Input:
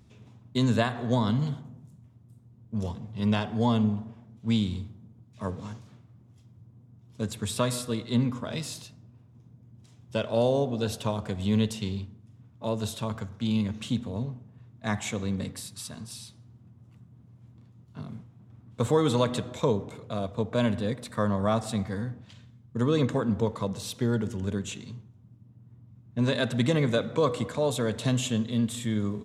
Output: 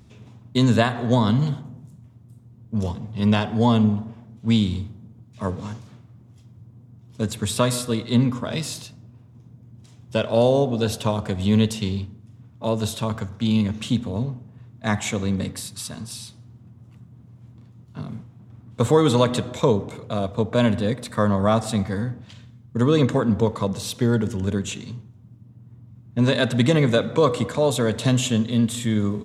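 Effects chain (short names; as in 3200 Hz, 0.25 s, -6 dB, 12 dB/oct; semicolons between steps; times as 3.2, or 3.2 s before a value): gain +6.5 dB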